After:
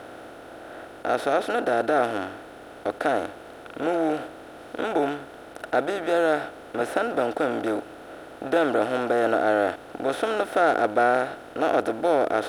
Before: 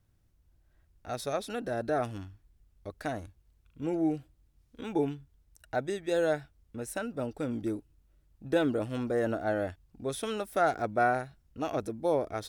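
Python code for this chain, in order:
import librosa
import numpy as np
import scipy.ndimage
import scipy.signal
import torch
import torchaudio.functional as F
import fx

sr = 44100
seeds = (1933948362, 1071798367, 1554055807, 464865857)

y = fx.bin_compress(x, sr, power=0.4)
y = fx.bass_treble(y, sr, bass_db=-12, treble_db=-10)
y = fx.band_squash(y, sr, depth_pct=40, at=(6.8, 7.37))
y = F.gain(torch.from_numpy(y), 3.0).numpy()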